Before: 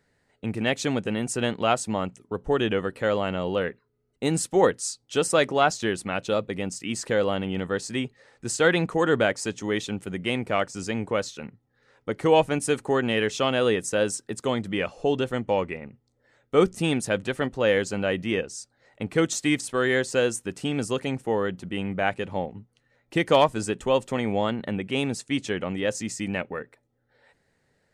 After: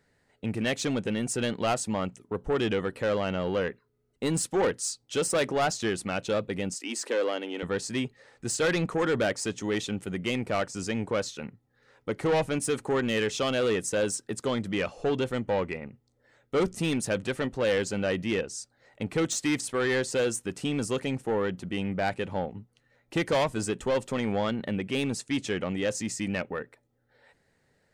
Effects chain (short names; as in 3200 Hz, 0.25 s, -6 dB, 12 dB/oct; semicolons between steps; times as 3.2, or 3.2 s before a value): soft clip -20.5 dBFS, distortion -10 dB; 6.74–7.63 Chebyshev high-pass 250 Hz, order 5